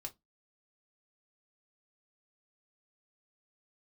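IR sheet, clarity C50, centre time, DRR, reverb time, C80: 21.5 dB, 7 ms, 1.5 dB, 0.15 s, 34.5 dB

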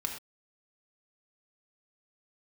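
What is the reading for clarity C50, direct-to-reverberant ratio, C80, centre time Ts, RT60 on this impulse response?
5.5 dB, 1.5 dB, 9.0 dB, 23 ms, no single decay rate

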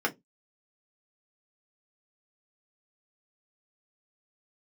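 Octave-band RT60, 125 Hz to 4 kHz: 0.25 s, 0.25 s, 0.20 s, 0.15 s, 0.10 s, 0.15 s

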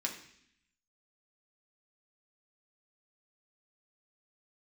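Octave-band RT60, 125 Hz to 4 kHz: 0.95 s, 0.95 s, 0.70 s, 0.65 s, 0.90 s, 0.85 s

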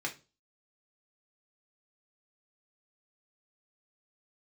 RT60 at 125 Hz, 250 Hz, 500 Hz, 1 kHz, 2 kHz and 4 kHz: 0.40 s, 0.40 s, 0.35 s, 0.30 s, 0.25 s, 0.30 s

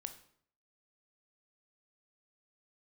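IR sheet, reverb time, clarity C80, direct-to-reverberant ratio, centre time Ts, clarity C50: 0.60 s, 15.0 dB, 8.0 dB, 9 ms, 11.5 dB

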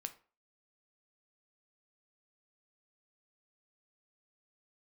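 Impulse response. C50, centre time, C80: 15.0 dB, 6 ms, 21.0 dB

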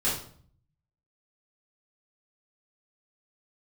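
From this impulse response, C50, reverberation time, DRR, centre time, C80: 4.0 dB, 0.55 s, -10.0 dB, 42 ms, 9.0 dB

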